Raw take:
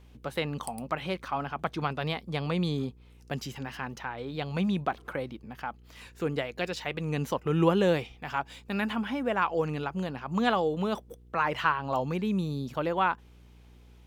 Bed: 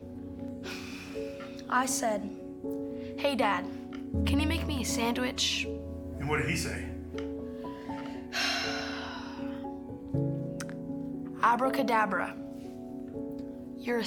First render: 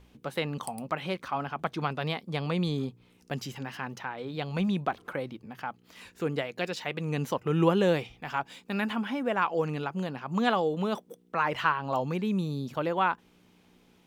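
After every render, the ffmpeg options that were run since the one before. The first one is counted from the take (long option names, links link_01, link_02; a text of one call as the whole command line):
ffmpeg -i in.wav -af "bandreject=frequency=60:width_type=h:width=4,bandreject=frequency=120:width_type=h:width=4" out.wav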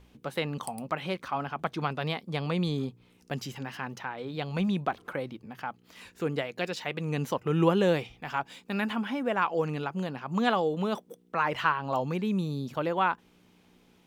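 ffmpeg -i in.wav -af anull out.wav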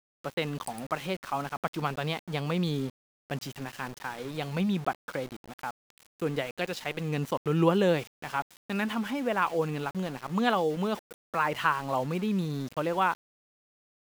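ffmpeg -i in.wav -af "aeval=exprs='val(0)*gte(abs(val(0)),0.01)':channel_layout=same" out.wav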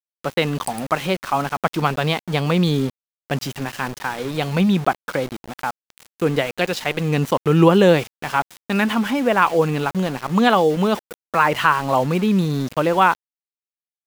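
ffmpeg -i in.wav -af "volume=11dB,alimiter=limit=-2dB:level=0:latency=1" out.wav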